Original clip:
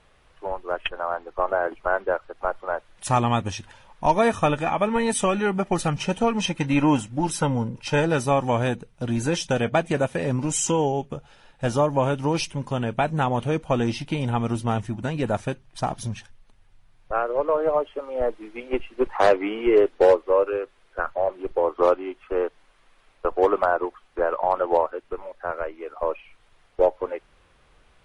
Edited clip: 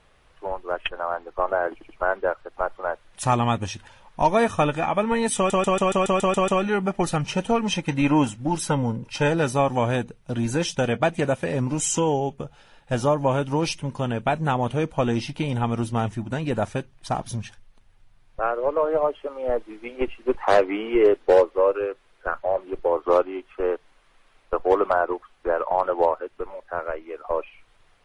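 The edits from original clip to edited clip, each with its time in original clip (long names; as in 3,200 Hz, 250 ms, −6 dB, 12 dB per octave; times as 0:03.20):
0:01.73: stutter 0.08 s, 3 plays
0:05.20: stutter 0.14 s, 9 plays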